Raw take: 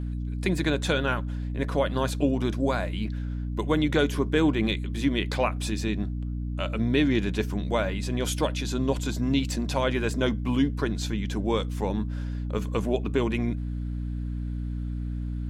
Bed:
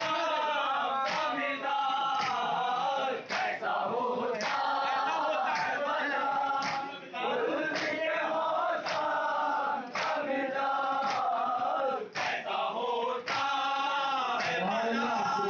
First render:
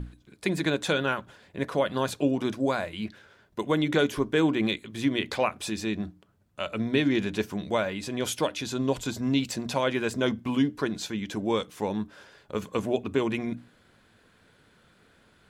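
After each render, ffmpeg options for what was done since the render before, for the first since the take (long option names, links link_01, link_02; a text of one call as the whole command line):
ffmpeg -i in.wav -af "bandreject=frequency=60:width_type=h:width=6,bandreject=frequency=120:width_type=h:width=6,bandreject=frequency=180:width_type=h:width=6,bandreject=frequency=240:width_type=h:width=6,bandreject=frequency=300:width_type=h:width=6" out.wav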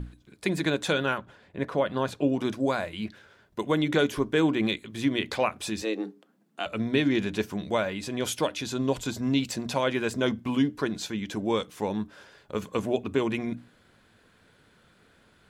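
ffmpeg -i in.wav -filter_complex "[0:a]asettb=1/sr,asplit=3[link_01][link_02][link_03];[link_01]atrim=end=1.184[link_04];[link_02]atrim=start=1.18:end=2.32,asetpts=PTS-STARTPTS,afade=type=in:duration=0.004:curve=qsin,afade=type=out:start_time=1.136:duration=0.004:curve=qsin,highshelf=frequency=4300:gain=-10.5[link_05];[link_03]atrim=start=2.316[link_06];[link_04][link_05]acrossfade=duration=0.004:curve1=hsin:curve2=qsin[link_07];[link_07][link_06]acrossfade=duration=0.004:curve1=qsin:curve2=hsin,asettb=1/sr,asplit=3[link_08][link_09][link_10];[link_08]atrim=end=5.824[link_11];[link_09]atrim=start=5.82:end=6.66,asetpts=PTS-STARTPTS,afade=type=in:duration=0.004:curve=qsin,afade=type=out:start_time=0.836:duration=0.004:curve=qsin,afreqshift=110[link_12];[link_10]atrim=start=6.656[link_13];[link_11][link_12]acrossfade=duration=0.004:curve1=hsin:curve2=qsin[link_14];[link_14][link_13]acrossfade=duration=0.004:curve1=qsin:curve2=hsin" out.wav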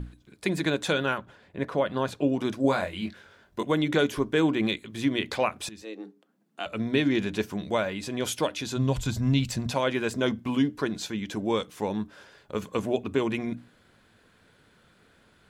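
ffmpeg -i in.wav -filter_complex "[0:a]asettb=1/sr,asplit=3[link_01][link_02][link_03];[link_01]atrim=end=2.624[link_04];[link_02]atrim=start=2.62:end=3.63,asetpts=PTS-STARTPTS,afade=type=in:duration=0.004:curve=qsin,afade=type=out:start_time=1.006:duration=0.004:curve=qsin,asplit=2[link_05][link_06];[link_06]adelay=22,volume=-3.5dB[link_07];[link_05][link_07]amix=inputs=2:normalize=0,atrim=end_sample=44541[link_08];[link_03]atrim=start=3.626[link_09];[link_04][link_08]acrossfade=duration=0.004:curve1=hsin:curve2=qsin[link_10];[link_10][link_09]acrossfade=duration=0.004:curve1=qsin:curve2=hsin,asplit=3[link_11][link_12][link_13];[link_11]afade=type=out:start_time=8.76:duration=0.02[link_14];[link_12]asubboost=boost=6:cutoff=130,afade=type=in:start_time=8.76:duration=0.02,afade=type=out:start_time=9.7:duration=0.02[link_15];[link_13]afade=type=in:start_time=9.7:duration=0.02[link_16];[link_14][link_15][link_16]amix=inputs=3:normalize=0,asplit=2[link_17][link_18];[link_17]atrim=end=5.69,asetpts=PTS-STARTPTS,afade=type=out:start_time=5.686:duration=0.004:curve=hsin:silence=0.177828[link_19];[link_18]atrim=start=5.69,asetpts=PTS-STARTPTS,afade=type=in:duration=1.23:silence=0.177828[link_20];[link_19][link_20]concat=n=2:v=0:a=1" out.wav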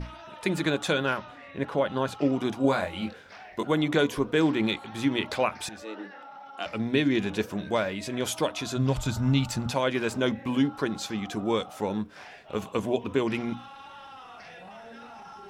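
ffmpeg -i in.wav -i bed.wav -filter_complex "[1:a]volume=-15.5dB[link_01];[0:a][link_01]amix=inputs=2:normalize=0" out.wav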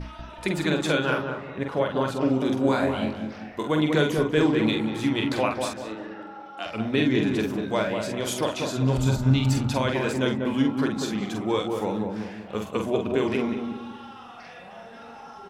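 ffmpeg -i in.wav -filter_complex "[0:a]asplit=2[link_01][link_02];[link_02]adelay=46,volume=-5dB[link_03];[link_01][link_03]amix=inputs=2:normalize=0,asplit=2[link_04][link_05];[link_05]adelay=193,lowpass=frequency=930:poles=1,volume=-3dB,asplit=2[link_06][link_07];[link_07]adelay=193,lowpass=frequency=930:poles=1,volume=0.45,asplit=2[link_08][link_09];[link_09]adelay=193,lowpass=frequency=930:poles=1,volume=0.45,asplit=2[link_10][link_11];[link_11]adelay=193,lowpass=frequency=930:poles=1,volume=0.45,asplit=2[link_12][link_13];[link_13]adelay=193,lowpass=frequency=930:poles=1,volume=0.45,asplit=2[link_14][link_15];[link_15]adelay=193,lowpass=frequency=930:poles=1,volume=0.45[link_16];[link_06][link_08][link_10][link_12][link_14][link_16]amix=inputs=6:normalize=0[link_17];[link_04][link_17]amix=inputs=2:normalize=0" out.wav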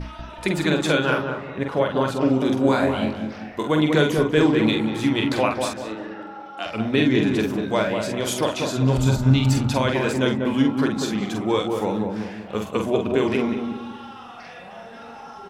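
ffmpeg -i in.wav -af "volume=3.5dB" out.wav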